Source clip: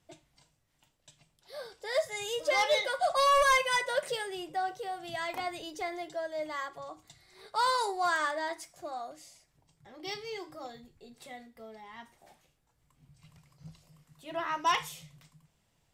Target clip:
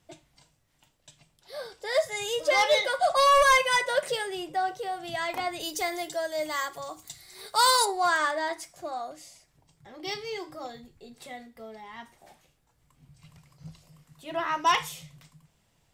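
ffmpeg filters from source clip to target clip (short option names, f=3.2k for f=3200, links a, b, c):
-filter_complex "[0:a]asplit=3[a][b][c];[a]afade=t=out:st=5.59:d=0.02[d];[b]aemphasis=mode=production:type=75kf,afade=t=in:st=5.59:d=0.02,afade=t=out:st=7.84:d=0.02[e];[c]afade=t=in:st=7.84:d=0.02[f];[d][e][f]amix=inputs=3:normalize=0,volume=4.5dB"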